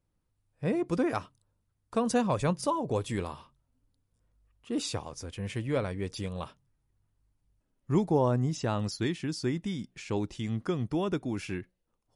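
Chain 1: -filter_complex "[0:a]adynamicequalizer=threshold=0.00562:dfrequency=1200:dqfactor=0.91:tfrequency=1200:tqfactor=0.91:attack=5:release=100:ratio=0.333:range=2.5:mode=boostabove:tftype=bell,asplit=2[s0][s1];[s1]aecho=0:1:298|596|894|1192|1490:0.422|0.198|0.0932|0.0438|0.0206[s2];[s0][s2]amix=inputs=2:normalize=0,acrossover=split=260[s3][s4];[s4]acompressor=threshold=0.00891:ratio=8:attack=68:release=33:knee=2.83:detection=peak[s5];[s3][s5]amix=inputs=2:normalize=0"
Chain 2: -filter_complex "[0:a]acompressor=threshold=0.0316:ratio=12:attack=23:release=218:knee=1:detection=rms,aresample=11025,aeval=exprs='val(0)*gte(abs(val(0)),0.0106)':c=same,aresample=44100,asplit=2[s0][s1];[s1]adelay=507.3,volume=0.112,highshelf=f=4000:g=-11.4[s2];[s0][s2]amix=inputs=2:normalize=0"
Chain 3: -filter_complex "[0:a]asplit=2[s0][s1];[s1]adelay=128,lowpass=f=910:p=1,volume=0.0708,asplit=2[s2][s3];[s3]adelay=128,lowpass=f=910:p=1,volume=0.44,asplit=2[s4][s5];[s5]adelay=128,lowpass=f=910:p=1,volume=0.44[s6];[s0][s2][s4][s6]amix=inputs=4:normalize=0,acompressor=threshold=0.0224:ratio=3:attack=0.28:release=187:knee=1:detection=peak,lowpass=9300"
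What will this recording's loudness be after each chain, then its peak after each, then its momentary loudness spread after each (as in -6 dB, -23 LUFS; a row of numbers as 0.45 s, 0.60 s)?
-33.0 LUFS, -36.5 LUFS, -39.0 LUFS; -16.0 dBFS, -20.0 dBFS, -26.5 dBFS; 13 LU, 9 LU, 8 LU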